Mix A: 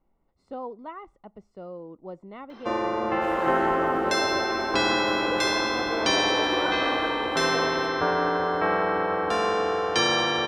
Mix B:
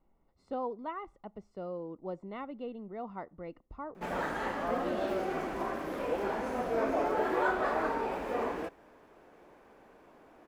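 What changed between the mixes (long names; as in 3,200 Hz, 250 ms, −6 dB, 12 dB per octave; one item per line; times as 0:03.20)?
first sound: muted
second sound: entry +0.80 s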